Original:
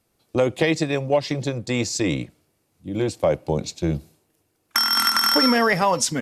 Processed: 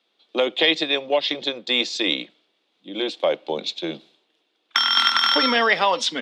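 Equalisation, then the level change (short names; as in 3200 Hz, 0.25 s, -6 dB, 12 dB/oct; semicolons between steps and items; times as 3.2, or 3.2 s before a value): Bessel high-pass 360 Hz, order 8; synth low-pass 3500 Hz, resonance Q 6.1; 0.0 dB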